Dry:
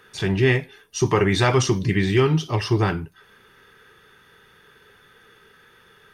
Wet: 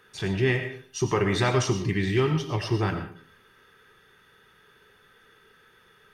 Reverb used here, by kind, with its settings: digital reverb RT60 0.46 s, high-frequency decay 0.7×, pre-delay 60 ms, DRR 7.5 dB; gain -5.5 dB

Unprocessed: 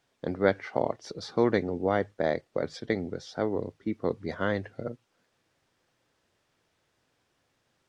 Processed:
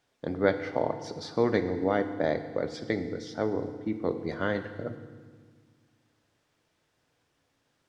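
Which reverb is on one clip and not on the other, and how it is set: FDN reverb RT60 1.6 s, low-frequency decay 1.45×, high-frequency decay 0.9×, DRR 8 dB; gain -1 dB

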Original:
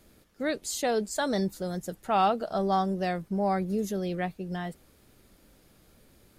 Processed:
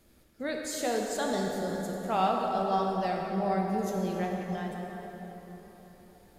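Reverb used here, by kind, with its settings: plate-style reverb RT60 4.4 s, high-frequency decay 0.6×, DRR -0.5 dB; gain -4.5 dB

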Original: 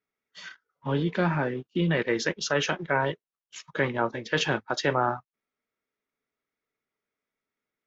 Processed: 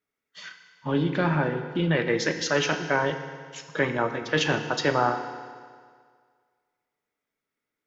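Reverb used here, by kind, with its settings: FDN reverb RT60 1.9 s, low-frequency decay 0.9×, high-frequency decay 0.9×, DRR 6.5 dB; gain +1 dB

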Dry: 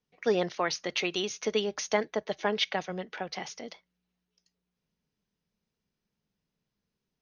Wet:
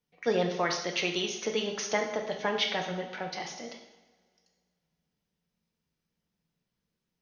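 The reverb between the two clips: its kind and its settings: two-slope reverb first 0.85 s, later 2.4 s, from -20 dB, DRR 2 dB; gain -1.5 dB

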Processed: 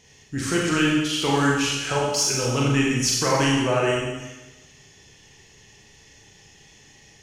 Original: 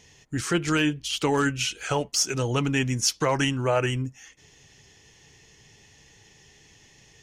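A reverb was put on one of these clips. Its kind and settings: Schroeder reverb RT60 1.1 s, combs from 29 ms, DRR -3.5 dB; gain -1.5 dB

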